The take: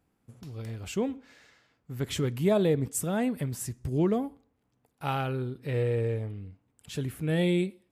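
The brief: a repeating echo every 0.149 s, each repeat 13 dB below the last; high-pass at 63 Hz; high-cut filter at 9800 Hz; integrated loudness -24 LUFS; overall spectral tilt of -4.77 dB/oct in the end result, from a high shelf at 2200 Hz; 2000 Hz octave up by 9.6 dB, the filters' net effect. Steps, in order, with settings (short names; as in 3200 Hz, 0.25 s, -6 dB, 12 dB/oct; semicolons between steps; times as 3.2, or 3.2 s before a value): HPF 63 Hz; LPF 9800 Hz; bell 2000 Hz +8.5 dB; high shelf 2200 Hz +6 dB; feedback echo 0.149 s, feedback 22%, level -13 dB; gain +4.5 dB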